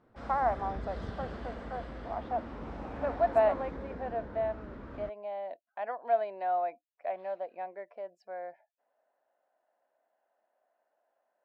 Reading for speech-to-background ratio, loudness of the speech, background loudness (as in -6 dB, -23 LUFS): 8.0 dB, -34.5 LUFS, -42.5 LUFS